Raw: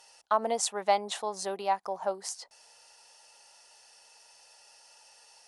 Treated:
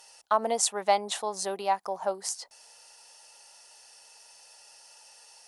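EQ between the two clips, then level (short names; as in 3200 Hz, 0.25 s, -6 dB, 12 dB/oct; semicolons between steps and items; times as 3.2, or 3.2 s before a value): high shelf 8400 Hz +7.5 dB; +1.5 dB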